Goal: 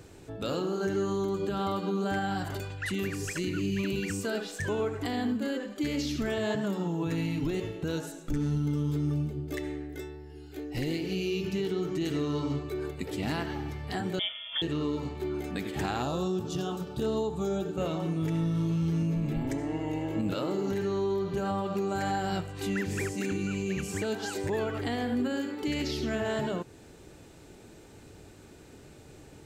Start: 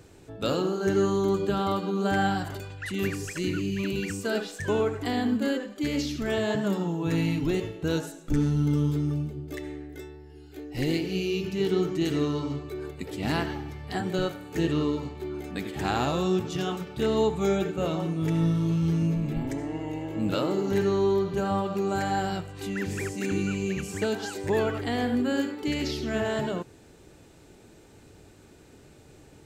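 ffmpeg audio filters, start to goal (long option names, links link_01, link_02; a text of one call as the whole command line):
ffmpeg -i in.wav -filter_complex "[0:a]alimiter=limit=-23dB:level=0:latency=1:release=235,asettb=1/sr,asplit=3[link_01][link_02][link_03];[link_01]atrim=end=14.194[link_04];[link_02]atrim=start=14.19:end=14.62,asetpts=PTS-STARTPTS,afade=type=in:duration=0.004:curve=qsin,afade=type=out:start_time=0.426:duration=0.004:curve=qsin,lowpass=frequency=3100:width_type=q:width=0.5098,lowpass=frequency=3100:width_type=q:width=0.6013,lowpass=frequency=3100:width_type=q:width=0.9,lowpass=frequency=3100:width_type=q:width=2.563,afreqshift=-3600[link_05];[link_03]atrim=start=14.616[link_06];[link_04][link_05]acrossfade=duration=0.004:curve1=hsin:curve2=qsin[link_07];[link_07][link_06]acrossfade=duration=0.004:curve1=qsin:curve2=hsin,asettb=1/sr,asplit=3[link_08][link_09][link_10];[link_08]atrim=end=16.024[link_11];[link_09]atrim=start=16.02:end=17.78,asetpts=PTS-STARTPTS,afade=type=in:duration=0.004:curve=qsin,afade=type=out:start_time=1.756:duration=0.004:curve=qsin,equalizer=frequency=2100:width=2.4:gain=-14.5[link_12];[link_10]atrim=start=17.776[link_13];[link_11][link_12]acrossfade=duration=0.004:curve1=hsin:curve2=qsin[link_14];[link_14][link_13]acrossfade=duration=0.004:curve1=qsin:curve2=hsin,volume=1.5dB" out.wav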